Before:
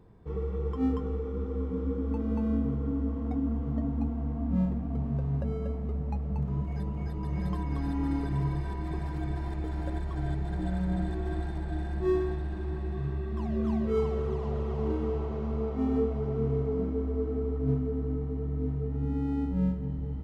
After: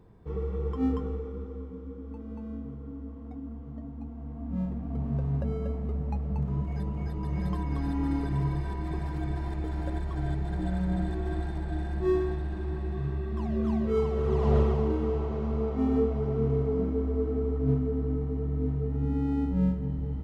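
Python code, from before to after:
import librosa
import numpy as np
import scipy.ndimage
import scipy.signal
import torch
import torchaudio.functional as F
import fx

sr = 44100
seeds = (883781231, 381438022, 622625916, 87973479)

y = fx.gain(x, sr, db=fx.line((1.01, 0.5), (1.82, -10.0), (3.99, -10.0), (5.15, 1.0), (14.13, 1.0), (14.57, 10.0), (14.89, 2.0)))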